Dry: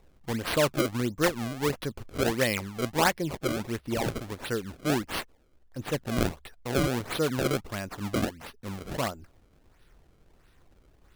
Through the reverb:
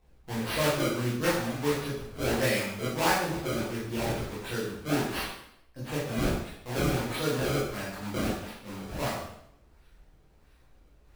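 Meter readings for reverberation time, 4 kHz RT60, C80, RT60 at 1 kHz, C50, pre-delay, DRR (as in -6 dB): 0.75 s, 0.70 s, 5.0 dB, 0.70 s, 1.5 dB, 6 ms, -9.5 dB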